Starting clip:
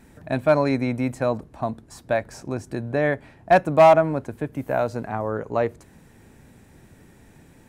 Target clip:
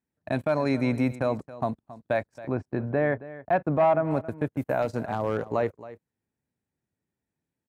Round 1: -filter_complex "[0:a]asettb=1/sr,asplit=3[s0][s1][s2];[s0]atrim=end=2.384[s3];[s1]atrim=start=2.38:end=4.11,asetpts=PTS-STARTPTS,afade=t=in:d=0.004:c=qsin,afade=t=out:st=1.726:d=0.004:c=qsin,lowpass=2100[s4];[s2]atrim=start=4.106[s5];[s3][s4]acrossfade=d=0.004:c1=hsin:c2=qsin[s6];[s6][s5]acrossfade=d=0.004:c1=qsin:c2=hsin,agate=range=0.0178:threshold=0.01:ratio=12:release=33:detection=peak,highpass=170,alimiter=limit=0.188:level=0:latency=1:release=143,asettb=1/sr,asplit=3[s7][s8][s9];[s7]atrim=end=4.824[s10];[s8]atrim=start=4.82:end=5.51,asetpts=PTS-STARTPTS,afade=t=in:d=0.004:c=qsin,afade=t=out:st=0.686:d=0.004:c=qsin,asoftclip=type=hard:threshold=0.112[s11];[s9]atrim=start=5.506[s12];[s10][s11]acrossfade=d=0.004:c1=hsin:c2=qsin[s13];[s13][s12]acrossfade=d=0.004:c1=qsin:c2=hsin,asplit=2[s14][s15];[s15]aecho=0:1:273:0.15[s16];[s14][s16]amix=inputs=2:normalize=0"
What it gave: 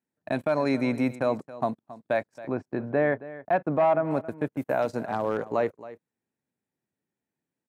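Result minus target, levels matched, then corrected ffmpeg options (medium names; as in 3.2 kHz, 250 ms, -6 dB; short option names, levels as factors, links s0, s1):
125 Hz band -4.5 dB
-filter_complex "[0:a]asettb=1/sr,asplit=3[s0][s1][s2];[s0]atrim=end=2.384[s3];[s1]atrim=start=2.38:end=4.11,asetpts=PTS-STARTPTS,afade=t=in:d=0.004:c=qsin,afade=t=out:st=1.726:d=0.004:c=qsin,lowpass=2100[s4];[s2]atrim=start=4.106[s5];[s3][s4]acrossfade=d=0.004:c1=hsin:c2=qsin[s6];[s6][s5]acrossfade=d=0.004:c1=qsin:c2=hsin,agate=range=0.0178:threshold=0.01:ratio=12:release=33:detection=peak,highpass=68,alimiter=limit=0.188:level=0:latency=1:release=143,asettb=1/sr,asplit=3[s7][s8][s9];[s7]atrim=end=4.824[s10];[s8]atrim=start=4.82:end=5.51,asetpts=PTS-STARTPTS,afade=t=in:d=0.004:c=qsin,afade=t=out:st=0.686:d=0.004:c=qsin,asoftclip=type=hard:threshold=0.112[s11];[s9]atrim=start=5.506[s12];[s10][s11]acrossfade=d=0.004:c1=hsin:c2=qsin[s13];[s13][s12]acrossfade=d=0.004:c1=qsin:c2=hsin,asplit=2[s14][s15];[s15]aecho=0:1:273:0.15[s16];[s14][s16]amix=inputs=2:normalize=0"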